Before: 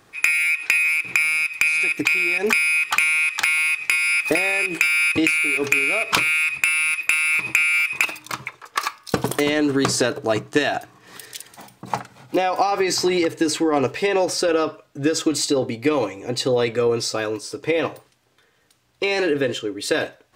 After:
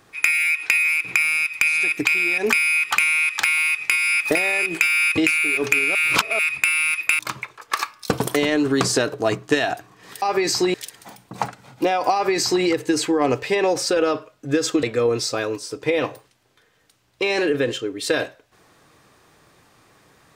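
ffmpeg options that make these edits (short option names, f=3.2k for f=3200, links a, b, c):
-filter_complex "[0:a]asplit=7[a][b][c][d][e][f][g];[a]atrim=end=5.952[h];[b]atrim=start=5.948:end=6.392,asetpts=PTS-STARTPTS,areverse[i];[c]atrim=start=6.388:end=7.192[j];[d]atrim=start=8.228:end=11.262[k];[e]atrim=start=12.648:end=13.172[l];[f]atrim=start=11.258:end=15.352[m];[g]atrim=start=16.638[n];[h][i]acrossfade=d=0.004:c1=hsin:c2=hsin[o];[o][j]acrossfade=d=0.004:c1=hsin:c2=hsin[p];[p][k]acrossfade=d=0.004:c1=hsin:c2=hsin[q];[q][l]acrossfade=d=0.004:c1=hsin:c2=hsin[r];[r][m]acrossfade=d=0.004:c1=hsin:c2=hsin[s];[s][n]acrossfade=d=0.004:c1=hsin:c2=hsin"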